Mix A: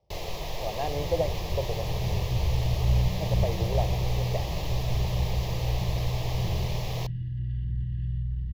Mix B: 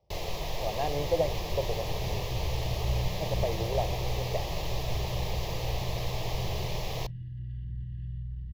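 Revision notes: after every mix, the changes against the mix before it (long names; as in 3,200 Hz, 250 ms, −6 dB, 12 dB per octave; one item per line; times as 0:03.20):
second sound −7.0 dB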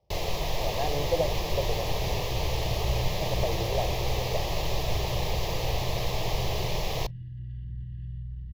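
first sound +4.5 dB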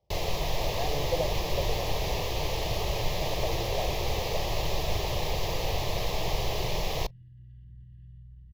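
speech −3.5 dB
second sound −11.5 dB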